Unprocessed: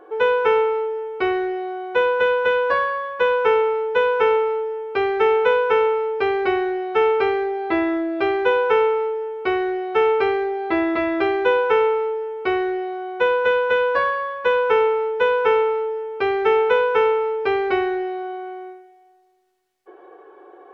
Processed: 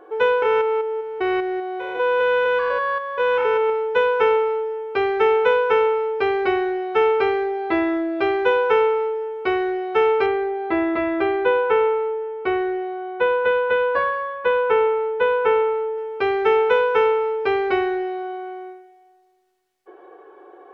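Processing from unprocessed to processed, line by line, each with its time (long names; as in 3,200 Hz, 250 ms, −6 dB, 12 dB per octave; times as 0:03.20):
0:00.42–0:03.70: spectrum averaged block by block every 200 ms
0:10.26–0:15.98: high-frequency loss of the air 200 metres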